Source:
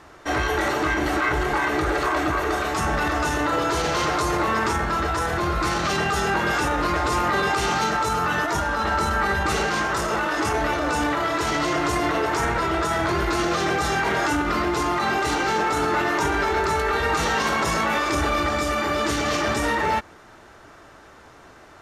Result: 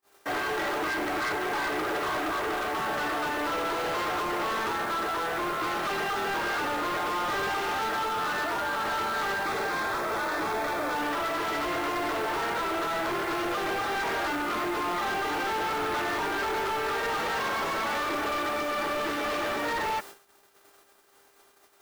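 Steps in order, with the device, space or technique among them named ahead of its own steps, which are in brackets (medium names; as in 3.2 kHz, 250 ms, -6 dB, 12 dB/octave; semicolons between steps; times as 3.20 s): aircraft radio (band-pass 320–2700 Hz; hard clipper -25.5 dBFS, distortion -9 dB; mains buzz 400 Hz, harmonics 32, -50 dBFS -4 dB/octave; white noise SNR 20 dB; gate -41 dBFS, range -41 dB); 9.44–10.96 s: band-stop 2.9 kHz, Q 5.9; trim -1.5 dB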